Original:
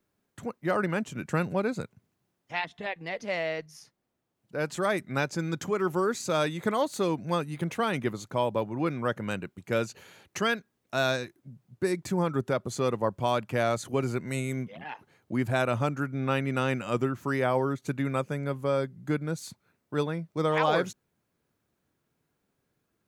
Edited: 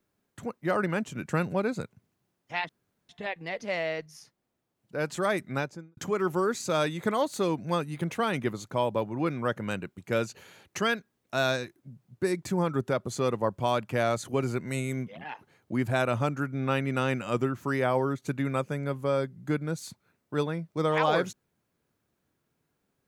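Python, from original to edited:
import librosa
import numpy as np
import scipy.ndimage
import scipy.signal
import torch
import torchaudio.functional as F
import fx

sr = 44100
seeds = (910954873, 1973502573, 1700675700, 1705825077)

y = fx.studio_fade_out(x, sr, start_s=5.06, length_s=0.51)
y = fx.edit(y, sr, fx.insert_room_tone(at_s=2.69, length_s=0.4), tone=tone)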